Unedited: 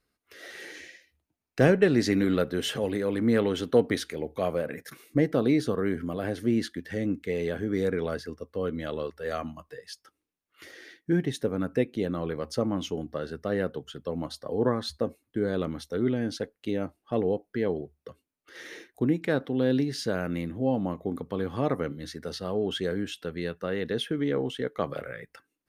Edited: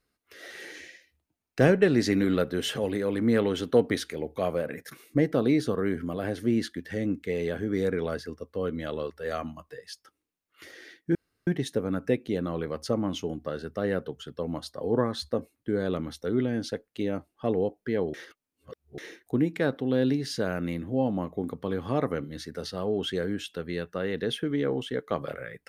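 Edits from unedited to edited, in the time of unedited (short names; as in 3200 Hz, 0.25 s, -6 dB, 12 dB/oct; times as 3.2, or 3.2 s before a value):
11.15 insert room tone 0.32 s
17.82–18.66 reverse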